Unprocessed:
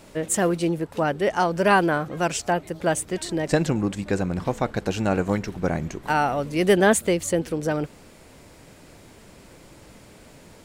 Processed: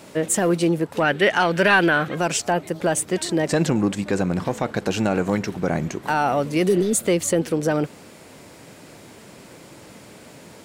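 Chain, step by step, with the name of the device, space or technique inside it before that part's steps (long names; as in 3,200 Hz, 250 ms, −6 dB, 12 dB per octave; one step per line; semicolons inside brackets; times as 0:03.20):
high-pass filter 120 Hz 12 dB per octave
soft clipper into limiter (soft clipping −9 dBFS, distortion −20 dB; brickwall limiter −15.5 dBFS, peak gain reduction 6 dB)
0:01.00–0:02.15: flat-topped bell 2,400 Hz +9 dB
0:06.70–0:07.00: healed spectral selection 510–3,400 Hz both
level +5 dB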